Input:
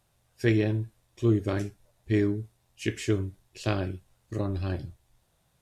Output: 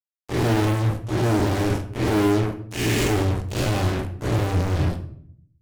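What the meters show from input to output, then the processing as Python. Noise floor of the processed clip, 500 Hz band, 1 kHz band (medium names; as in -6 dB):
-68 dBFS, +6.5 dB, +15.0 dB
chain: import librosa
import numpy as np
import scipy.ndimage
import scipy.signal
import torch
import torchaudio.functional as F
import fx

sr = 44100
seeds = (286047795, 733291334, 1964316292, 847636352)

y = fx.spec_blur(x, sr, span_ms=198.0)
y = fx.rotary(y, sr, hz=0.9)
y = fx.fuzz(y, sr, gain_db=50.0, gate_db=-48.0)
y = fx.room_shoebox(y, sr, seeds[0], volume_m3=95.0, walls='mixed', distance_m=0.41)
y = F.gain(torch.from_numpy(y), -7.0).numpy()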